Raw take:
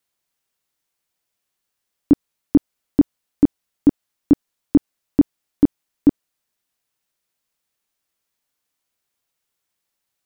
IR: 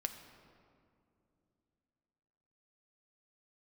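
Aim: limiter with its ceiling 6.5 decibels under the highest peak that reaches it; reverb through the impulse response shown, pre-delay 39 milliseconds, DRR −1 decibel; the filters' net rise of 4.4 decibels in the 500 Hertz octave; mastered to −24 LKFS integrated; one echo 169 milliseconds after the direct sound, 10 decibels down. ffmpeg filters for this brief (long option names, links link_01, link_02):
-filter_complex "[0:a]equalizer=frequency=500:width_type=o:gain=7,alimiter=limit=-9dB:level=0:latency=1,aecho=1:1:169:0.316,asplit=2[link_01][link_02];[1:a]atrim=start_sample=2205,adelay=39[link_03];[link_02][link_03]afir=irnorm=-1:irlink=0,volume=1.5dB[link_04];[link_01][link_04]amix=inputs=2:normalize=0,volume=-2dB"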